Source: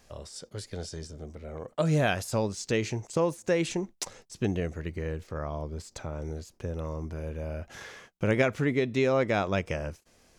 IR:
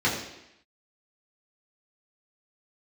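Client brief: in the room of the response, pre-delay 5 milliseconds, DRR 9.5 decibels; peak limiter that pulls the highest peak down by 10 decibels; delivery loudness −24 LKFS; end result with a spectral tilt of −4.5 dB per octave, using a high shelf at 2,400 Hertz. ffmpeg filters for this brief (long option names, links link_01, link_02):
-filter_complex "[0:a]highshelf=frequency=2400:gain=8,alimiter=limit=-18.5dB:level=0:latency=1,asplit=2[link_01][link_02];[1:a]atrim=start_sample=2205,adelay=5[link_03];[link_02][link_03]afir=irnorm=-1:irlink=0,volume=-24dB[link_04];[link_01][link_04]amix=inputs=2:normalize=0,volume=7.5dB"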